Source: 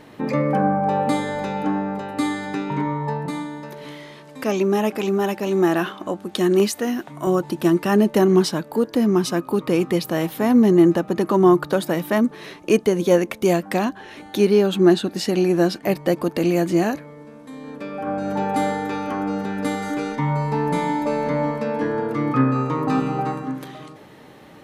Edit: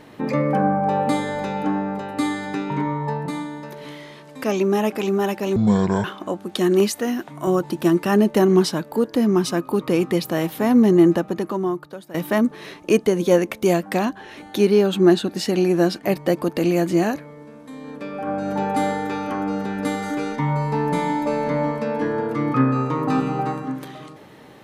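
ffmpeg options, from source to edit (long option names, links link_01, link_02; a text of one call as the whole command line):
ffmpeg -i in.wav -filter_complex "[0:a]asplit=4[link_01][link_02][link_03][link_04];[link_01]atrim=end=5.564[link_05];[link_02]atrim=start=5.56:end=5.84,asetpts=PTS-STARTPTS,asetrate=25578,aresample=44100[link_06];[link_03]atrim=start=5.836:end=11.94,asetpts=PTS-STARTPTS,afade=type=out:start_time=5.134:duration=0.97:curve=qua:silence=0.133352[link_07];[link_04]atrim=start=11.94,asetpts=PTS-STARTPTS,afade=type=in:duration=0.004:curve=hsin:silence=0.133352[link_08];[link_05][link_06]acrossfade=duration=0.004:curve1=hsin:curve2=hsin[link_09];[link_07][link_08]concat=n=2:v=0:a=1[link_10];[link_09][link_10]acrossfade=duration=0.004:curve1=hsin:curve2=hsin" out.wav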